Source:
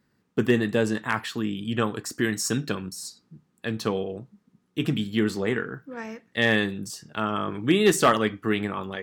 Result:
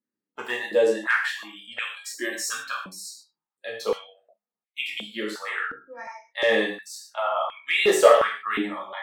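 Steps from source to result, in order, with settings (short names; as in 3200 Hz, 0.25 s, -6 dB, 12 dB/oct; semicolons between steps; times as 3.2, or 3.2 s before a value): spectral noise reduction 22 dB; non-linear reverb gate 0.17 s falling, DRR -3.5 dB; stepped high-pass 2.8 Hz 280–2200 Hz; gain -6 dB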